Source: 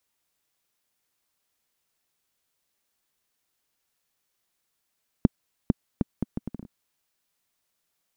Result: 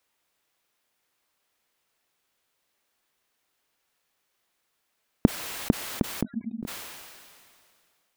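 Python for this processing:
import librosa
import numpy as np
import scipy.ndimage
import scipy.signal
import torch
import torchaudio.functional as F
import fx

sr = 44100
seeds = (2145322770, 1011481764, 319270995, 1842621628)

y = fx.bass_treble(x, sr, bass_db=-6, treble_db=-6)
y = fx.spec_topn(y, sr, count=2, at=(6.23, 6.63))
y = fx.sustainer(y, sr, db_per_s=27.0)
y = y * 10.0 ** (6.0 / 20.0)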